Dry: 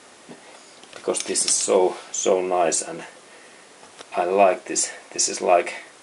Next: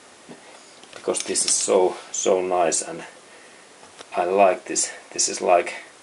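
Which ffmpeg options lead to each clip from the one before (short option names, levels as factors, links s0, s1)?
-af "equalizer=f=86:t=o:w=0.37:g=5"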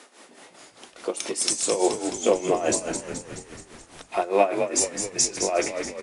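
-filter_complex "[0:a]highpass=f=210:w=0.5412,highpass=f=210:w=1.3066,tremolo=f=4.8:d=0.78,asplit=2[s0][s1];[s1]asplit=8[s2][s3][s4][s5][s6][s7][s8][s9];[s2]adelay=213,afreqshift=-64,volume=0.422[s10];[s3]adelay=426,afreqshift=-128,volume=0.248[s11];[s4]adelay=639,afreqshift=-192,volume=0.146[s12];[s5]adelay=852,afreqshift=-256,volume=0.0871[s13];[s6]adelay=1065,afreqshift=-320,volume=0.0513[s14];[s7]adelay=1278,afreqshift=-384,volume=0.0302[s15];[s8]adelay=1491,afreqshift=-448,volume=0.0178[s16];[s9]adelay=1704,afreqshift=-512,volume=0.0105[s17];[s10][s11][s12][s13][s14][s15][s16][s17]amix=inputs=8:normalize=0[s18];[s0][s18]amix=inputs=2:normalize=0"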